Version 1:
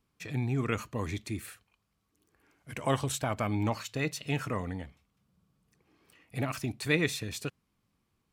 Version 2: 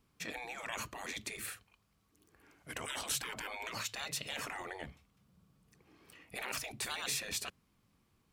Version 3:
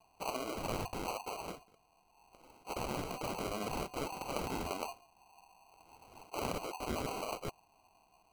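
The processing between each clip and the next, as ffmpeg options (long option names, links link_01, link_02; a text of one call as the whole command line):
ffmpeg -i in.wav -af "afftfilt=real='re*lt(hypot(re,im),0.0355)':imag='im*lt(hypot(re,im),0.0355)':win_size=1024:overlap=0.75,volume=3.5dB" out.wav
ffmpeg -i in.wav -af "lowpass=frequency=2500:width_type=q:width=0.5098,lowpass=frequency=2500:width_type=q:width=0.6013,lowpass=frequency=2500:width_type=q:width=0.9,lowpass=frequency=2500:width_type=q:width=2.563,afreqshift=-2900,acrusher=samples=25:mix=1:aa=0.000001,volume=5.5dB" out.wav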